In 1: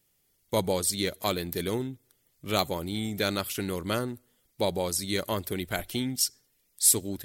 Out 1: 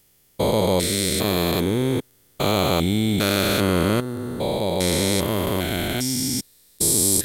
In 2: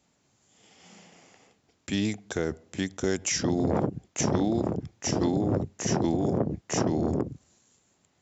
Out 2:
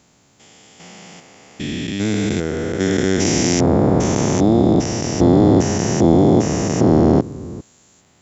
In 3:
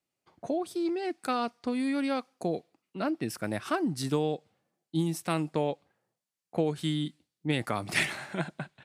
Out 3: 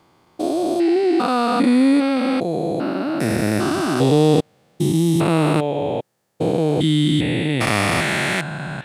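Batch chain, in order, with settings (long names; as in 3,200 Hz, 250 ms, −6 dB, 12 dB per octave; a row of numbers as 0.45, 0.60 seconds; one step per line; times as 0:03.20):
spectrum averaged block by block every 400 ms
normalise the peak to −1.5 dBFS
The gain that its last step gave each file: +13.0, +15.5, +17.5 decibels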